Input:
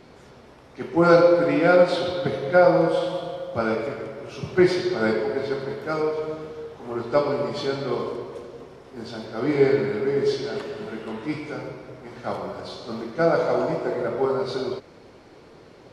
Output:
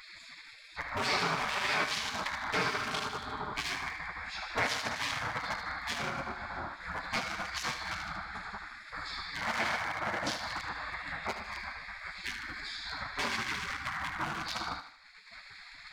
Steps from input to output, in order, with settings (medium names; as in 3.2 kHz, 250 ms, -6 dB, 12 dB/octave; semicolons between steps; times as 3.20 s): local Wiener filter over 15 samples; expander -40 dBFS; bass shelf 270 Hz -7.5 dB; spectral gate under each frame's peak -25 dB weak; in parallel at +1 dB: peak limiter -30 dBFS, peak gain reduction 9.5 dB; on the sum: upward compressor, threshold -28 dBFS; on a send: thinning echo 76 ms, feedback 44%, high-pass 420 Hz, level -9 dB; on the sum: loudspeaker Doppler distortion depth 0.15 ms